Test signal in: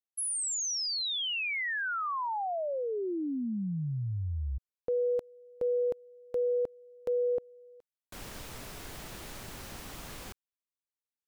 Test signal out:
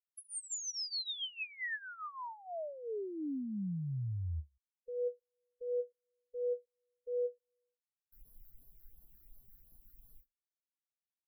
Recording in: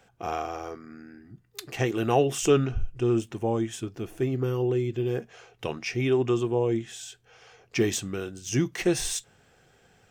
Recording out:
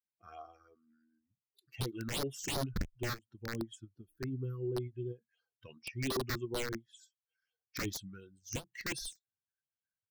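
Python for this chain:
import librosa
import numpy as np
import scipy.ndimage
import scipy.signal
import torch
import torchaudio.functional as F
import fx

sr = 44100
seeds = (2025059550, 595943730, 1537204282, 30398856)

y = fx.bin_expand(x, sr, power=2.0)
y = (np.mod(10.0 ** (24.0 / 20.0) * y + 1.0, 2.0) - 1.0) / 10.0 ** (24.0 / 20.0)
y = fx.phaser_stages(y, sr, stages=6, low_hz=730.0, high_hz=2500.0, hz=2.8, feedback_pct=35)
y = fx.end_taper(y, sr, db_per_s=380.0)
y = F.gain(torch.from_numpy(y), -4.0).numpy()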